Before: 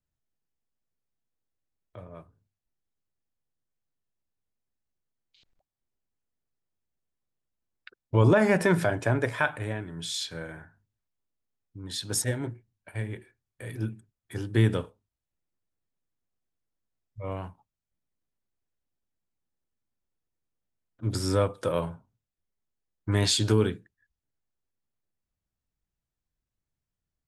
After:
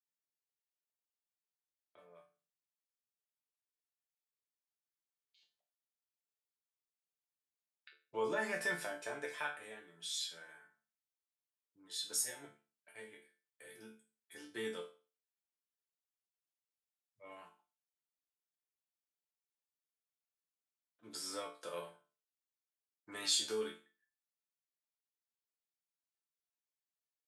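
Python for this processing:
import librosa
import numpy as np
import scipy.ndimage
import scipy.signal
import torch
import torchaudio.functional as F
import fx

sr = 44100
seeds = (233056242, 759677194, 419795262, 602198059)

y = scipy.signal.sosfilt(scipy.signal.butter(2, 570.0, 'highpass', fs=sr, output='sos'), x)
y = fx.peak_eq(y, sr, hz=970.0, db=-6.5, octaves=2.6)
y = fx.resonator_bank(y, sr, root=50, chord='minor', decay_s=0.34)
y = y * librosa.db_to_amplitude(9.0)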